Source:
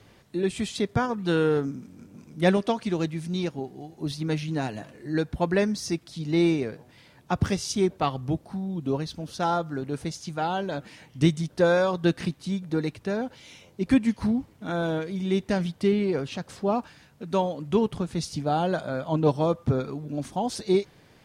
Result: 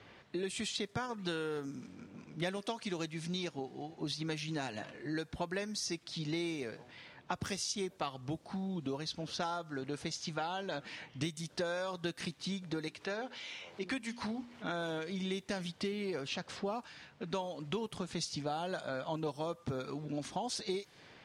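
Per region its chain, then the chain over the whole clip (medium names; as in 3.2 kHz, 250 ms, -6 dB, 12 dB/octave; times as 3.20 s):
12.88–14.64 s: bass shelf 260 Hz -11 dB + hum notches 60/120/180/240/300/360/420 Hz + upward compressor, threshold -41 dBFS
whole clip: level-controlled noise filter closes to 2.6 kHz, open at -19.5 dBFS; tilt EQ +2.5 dB/octave; compression 6:1, threshold -36 dBFS; trim +1 dB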